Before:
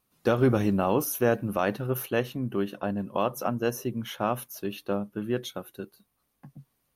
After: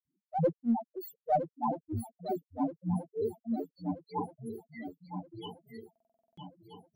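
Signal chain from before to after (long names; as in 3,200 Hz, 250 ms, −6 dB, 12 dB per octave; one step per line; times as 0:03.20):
spectral peaks only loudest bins 1
in parallel at −9.5 dB: asymmetric clip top −32.5 dBFS, bottom −26 dBFS
on the sum: granular cloud 222 ms, grains 3.2 per second, spray 63 ms, pitch spread up and down by 7 semitones
feedback echo with a long and a short gap by turns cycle 1,278 ms, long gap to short 3 to 1, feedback 45%, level −10 dB
buffer that repeats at 0:05.91, samples 2,048, times 9
level +5 dB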